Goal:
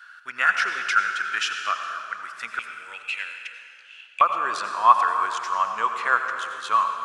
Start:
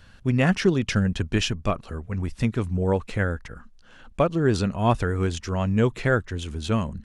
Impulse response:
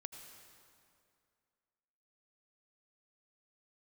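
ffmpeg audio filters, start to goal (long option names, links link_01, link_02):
-filter_complex "[0:a]asetnsamples=nb_out_samples=441:pad=0,asendcmd='2.59 highpass f 2600;4.21 highpass f 1100',highpass=frequency=1400:width_type=q:width=9.4[link_01];[1:a]atrim=start_sample=2205[link_02];[link_01][link_02]afir=irnorm=-1:irlink=0,volume=3.5dB"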